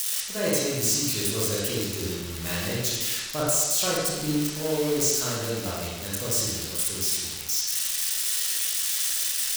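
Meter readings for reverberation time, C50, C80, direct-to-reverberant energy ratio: 1.3 s, −2.5 dB, 0.5 dB, −7.0 dB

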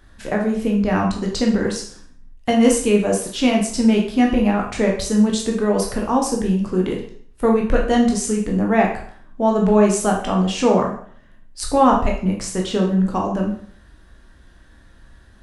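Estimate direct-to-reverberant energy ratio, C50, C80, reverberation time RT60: −0.5 dB, 5.5 dB, 10.0 dB, 0.55 s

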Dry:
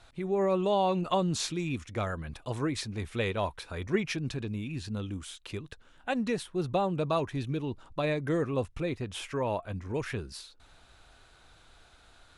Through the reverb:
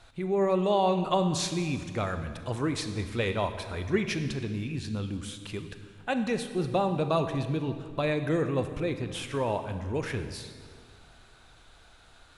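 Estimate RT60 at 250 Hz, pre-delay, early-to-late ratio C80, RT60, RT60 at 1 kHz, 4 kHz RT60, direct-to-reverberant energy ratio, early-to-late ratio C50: 2.3 s, 27 ms, 10.5 dB, 2.0 s, 1.9 s, 1.6 s, 8.5 dB, 9.0 dB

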